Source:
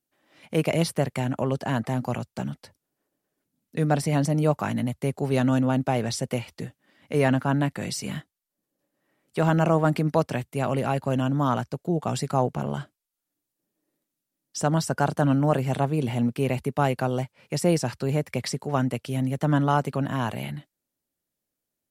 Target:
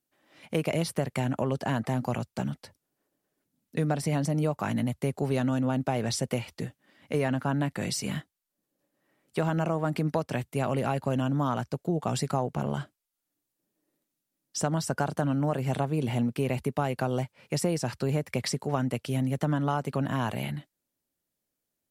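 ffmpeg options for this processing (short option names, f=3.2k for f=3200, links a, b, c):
-af "acompressor=threshold=-23dB:ratio=6"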